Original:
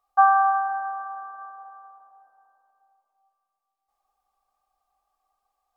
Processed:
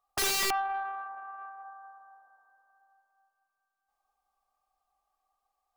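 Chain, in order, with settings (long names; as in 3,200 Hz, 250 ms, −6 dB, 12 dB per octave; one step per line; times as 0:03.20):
feedback echo with a high-pass in the loop 219 ms, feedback 72%, high-pass 500 Hz, level −16.5 dB
0:00.50–0:01.64: tube saturation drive 20 dB, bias 0.25
wrap-around overflow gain 19.5 dB
level −4 dB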